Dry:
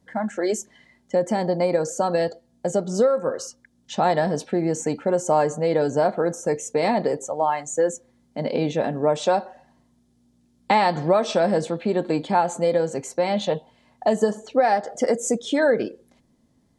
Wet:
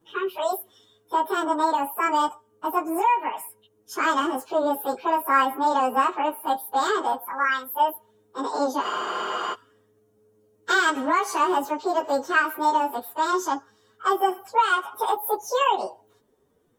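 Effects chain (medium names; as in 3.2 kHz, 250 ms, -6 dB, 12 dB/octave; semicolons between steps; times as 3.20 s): frequency-domain pitch shifter +10 st; spectral freeze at 8.84 s, 0.69 s; trim +1.5 dB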